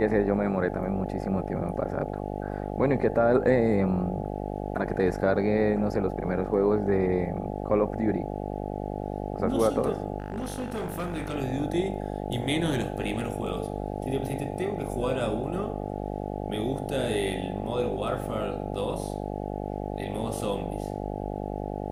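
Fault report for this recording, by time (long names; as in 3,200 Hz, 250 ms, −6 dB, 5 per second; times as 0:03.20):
mains buzz 50 Hz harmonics 17 −33 dBFS
0:10.18–0:11.36: clipping −27 dBFS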